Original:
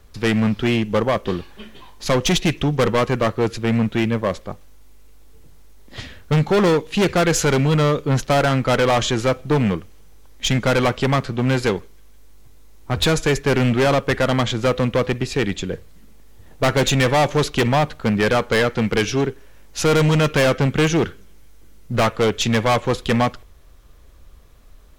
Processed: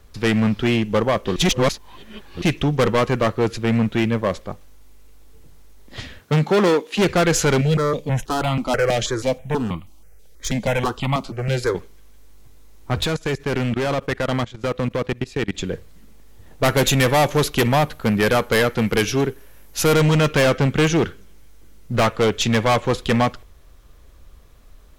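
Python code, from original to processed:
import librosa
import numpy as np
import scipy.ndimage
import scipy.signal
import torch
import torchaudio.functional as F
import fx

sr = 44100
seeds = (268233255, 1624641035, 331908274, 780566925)

y = fx.highpass(x, sr, hz=fx.line((6.18, 97.0), (6.97, 280.0)), slope=24, at=(6.18, 6.97), fade=0.02)
y = fx.phaser_held(y, sr, hz=6.2, low_hz=280.0, high_hz=1600.0, at=(7.61, 11.75))
y = fx.level_steps(y, sr, step_db=21, at=(13.01, 15.58))
y = fx.peak_eq(y, sr, hz=12000.0, db=13.0, octaves=0.49, at=(16.65, 19.94))
y = fx.edit(y, sr, fx.reverse_span(start_s=1.36, length_s=1.06), tone=tone)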